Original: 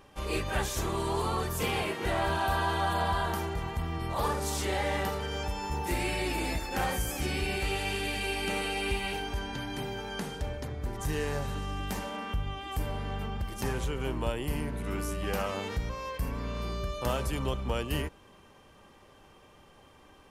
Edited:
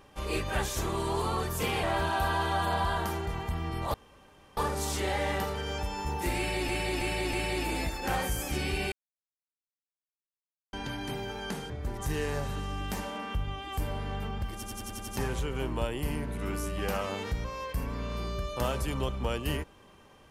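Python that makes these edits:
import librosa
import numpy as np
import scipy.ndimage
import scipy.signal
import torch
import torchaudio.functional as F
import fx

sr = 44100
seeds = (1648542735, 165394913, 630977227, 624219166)

y = fx.edit(x, sr, fx.cut(start_s=1.83, length_s=0.28),
    fx.insert_room_tone(at_s=4.22, length_s=0.63),
    fx.repeat(start_s=6.02, length_s=0.32, count=4),
    fx.silence(start_s=7.61, length_s=1.81),
    fx.cut(start_s=10.39, length_s=0.3),
    fx.stutter(start_s=13.53, slice_s=0.09, count=7), tone=tone)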